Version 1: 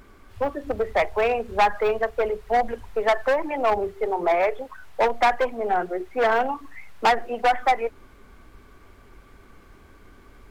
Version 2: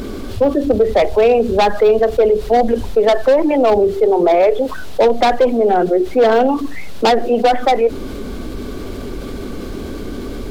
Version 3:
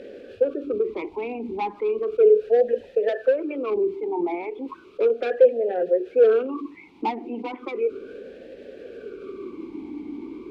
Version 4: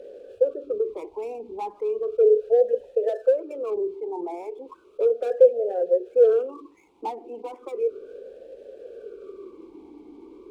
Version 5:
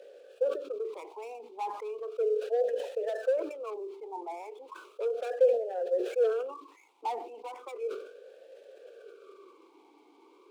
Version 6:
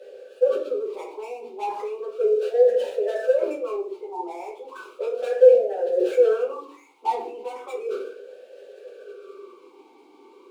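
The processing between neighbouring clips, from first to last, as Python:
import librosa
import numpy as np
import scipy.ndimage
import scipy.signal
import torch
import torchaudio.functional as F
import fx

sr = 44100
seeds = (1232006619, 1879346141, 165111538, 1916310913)

y1 = fx.graphic_eq(x, sr, hz=(250, 500, 1000, 2000, 4000), db=(8, 6, -6, -7, 6))
y1 = fx.env_flatten(y1, sr, amount_pct=50)
y1 = F.gain(torch.from_numpy(y1), 4.5).numpy()
y2 = fx.vowel_sweep(y1, sr, vowels='e-u', hz=0.35)
y3 = scipy.ndimage.median_filter(y2, 9, mode='constant')
y3 = fx.graphic_eq(y3, sr, hz=(125, 250, 500, 2000), db=(-9, -11, 8, -11))
y3 = F.gain(torch.from_numpy(y3), -4.5).numpy()
y4 = scipy.signal.sosfilt(scipy.signal.butter(2, 840.0, 'highpass', fs=sr, output='sos'), y3)
y4 = fx.sustainer(y4, sr, db_per_s=80.0)
y5 = fx.room_shoebox(y4, sr, seeds[0], volume_m3=34.0, walls='mixed', distance_m=1.1)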